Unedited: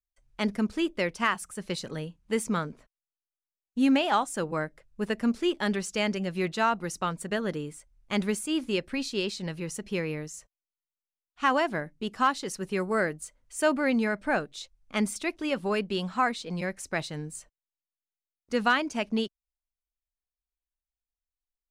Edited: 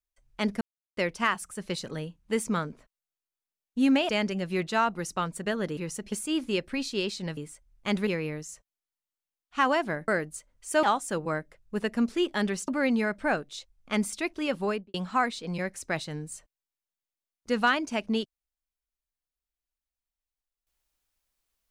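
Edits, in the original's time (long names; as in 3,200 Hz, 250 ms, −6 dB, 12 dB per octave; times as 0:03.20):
0:00.61–0:00.97: silence
0:04.09–0:05.94: move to 0:13.71
0:07.62–0:08.32: swap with 0:09.57–0:09.92
0:11.93–0:12.96: remove
0:15.68–0:15.97: fade out and dull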